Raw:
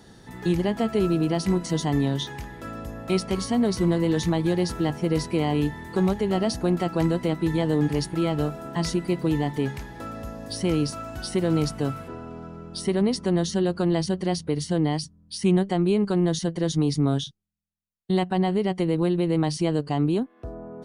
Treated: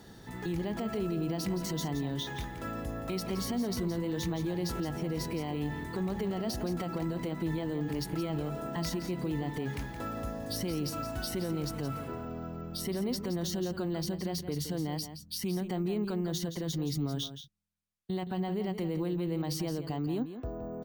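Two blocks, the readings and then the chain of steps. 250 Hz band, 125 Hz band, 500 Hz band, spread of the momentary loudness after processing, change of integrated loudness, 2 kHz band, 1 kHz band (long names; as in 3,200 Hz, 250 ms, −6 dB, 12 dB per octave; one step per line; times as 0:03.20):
−9.5 dB, −9.0 dB, −10.0 dB, 6 LU, −9.5 dB, −7.5 dB, −9.0 dB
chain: brickwall limiter −23.5 dBFS, peak gain reduction 12 dB
on a send: single-tap delay 170 ms −10.5 dB
on the sum: bad sample-rate conversion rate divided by 2×, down none, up hold
level −2 dB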